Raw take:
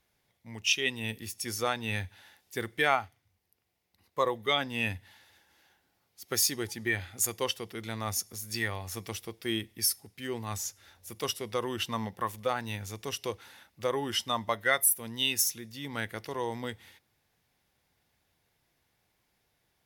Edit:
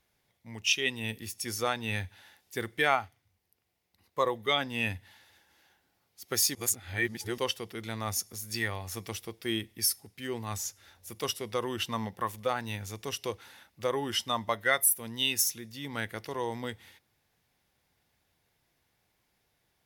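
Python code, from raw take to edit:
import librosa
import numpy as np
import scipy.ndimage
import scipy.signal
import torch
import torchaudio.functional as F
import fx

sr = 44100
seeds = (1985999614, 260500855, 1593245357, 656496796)

y = fx.edit(x, sr, fx.reverse_span(start_s=6.55, length_s=0.83), tone=tone)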